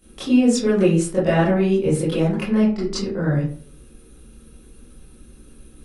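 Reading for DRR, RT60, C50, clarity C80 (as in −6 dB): −10.5 dB, 0.50 s, 4.0 dB, 10.5 dB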